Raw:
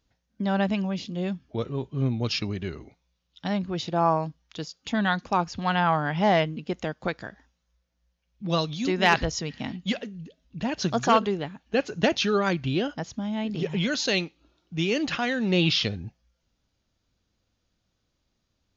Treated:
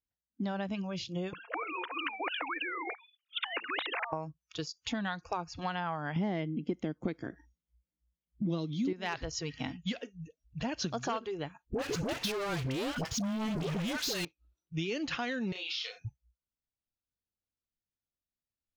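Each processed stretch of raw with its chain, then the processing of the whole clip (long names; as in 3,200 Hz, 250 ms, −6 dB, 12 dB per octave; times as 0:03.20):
0:01.33–0:04.13: three sine waves on the formant tracks + Bessel high-pass filter 550 Hz, order 6 + every bin compressed towards the loudest bin 10 to 1
0:06.16–0:08.93: parametric band 190 Hz +10.5 dB 2.1 octaves + hollow resonant body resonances 320/2,100/3,200 Hz, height 10 dB, ringing for 20 ms
0:11.65–0:14.25: downward compressor, threshold −27 dBFS + leveller curve on the samples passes 5 + all-pass dispersion highs, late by 73 ms, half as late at 840 Hz
0:15.52–0:16.05: high-pass filter 780 Hz + downward compressor, threshold −34 dBFS + double-tracking delay 32 ms −2.5 dB
whole clip: noise reduction from a noise print of the clip's start 25 dB; downward compressor 6 to 1, threshold −32 dBFS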